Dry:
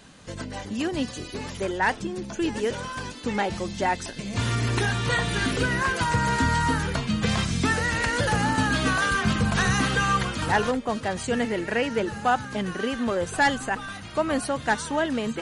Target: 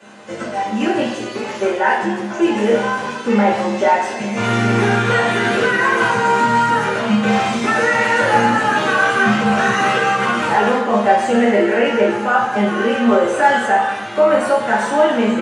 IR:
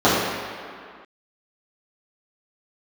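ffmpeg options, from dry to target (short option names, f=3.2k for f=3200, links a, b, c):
-filter_complex "[0:a]highpass=120,alimiter=limit=-17.5dB:level=0:latency=1,acrossover=split=240|3100[a][b][c];[c]asoftclip=type=tanh:threshold=-32.5dB[d];[a][b][d]amix=inputs=3:normalize=0,asplit=2[e][f];[f]adelay=13,volume=-7dB[g];[e][g]amix=inputs=2:normalize=0[h];[1:a]atrim=start_sample=2205,asetrate=83790,aresample=44100[i];[h][i]afir=irnorm=-1:irlink=0,volume=-11dB"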